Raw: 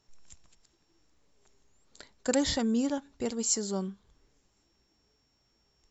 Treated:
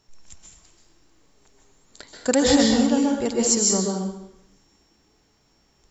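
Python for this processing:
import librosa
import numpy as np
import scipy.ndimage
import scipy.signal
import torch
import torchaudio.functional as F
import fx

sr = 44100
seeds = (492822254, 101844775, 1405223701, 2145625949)

y = fx.rev_plate(x, sr, seeds[0], rt60_s=0.8, hf_ratio=0.85, predelay_ms=120, drr_db=-1.0)
y = y * librosa.db_to_amplitude(7.0)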